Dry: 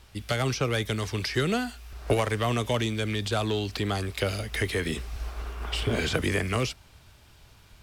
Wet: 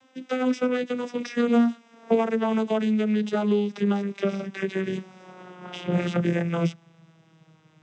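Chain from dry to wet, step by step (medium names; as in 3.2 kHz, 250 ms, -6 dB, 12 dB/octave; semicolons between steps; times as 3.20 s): vocoder on a note that slides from C4, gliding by -9 st; band-stop 4.4 kHz, Q 5.6; trim +4.5 dB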